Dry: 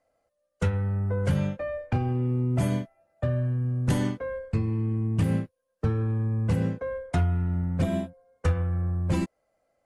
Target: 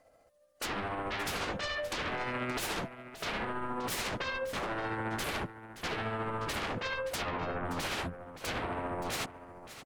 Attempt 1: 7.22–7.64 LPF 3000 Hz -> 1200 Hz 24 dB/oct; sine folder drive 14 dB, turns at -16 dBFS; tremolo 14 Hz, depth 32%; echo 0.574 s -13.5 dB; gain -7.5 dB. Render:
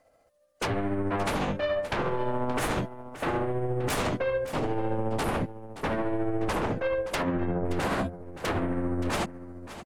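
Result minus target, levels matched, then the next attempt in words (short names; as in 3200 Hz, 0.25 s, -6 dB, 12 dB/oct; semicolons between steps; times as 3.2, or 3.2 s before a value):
sine folder: distortion -13 dB
7.22–7.64 LPF 3000 Hz -> 1200 Hz 24 dB/oct; sine folder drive 14 dB, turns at -23.5 dBFS; tremolo 14 Hz, depth 32%; echo 0.574 s -13.5 dB; gain -7.5 dB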